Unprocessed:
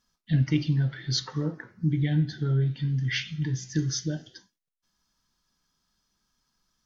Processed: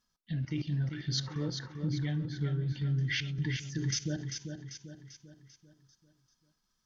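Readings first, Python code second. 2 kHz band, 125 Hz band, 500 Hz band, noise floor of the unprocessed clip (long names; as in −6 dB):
−3.0 dB, −6.5 dB, −5.5 dB, −85 dBFS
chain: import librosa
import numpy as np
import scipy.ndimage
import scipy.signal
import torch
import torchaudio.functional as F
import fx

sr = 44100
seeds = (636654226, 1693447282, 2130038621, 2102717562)

p1 = fx.level_steps(x, sr, step_db=16)
y = p1 + fx.echo_feedback(p1, sr, ms=393, feedback_pct=47, wet_db=-7, dry=0)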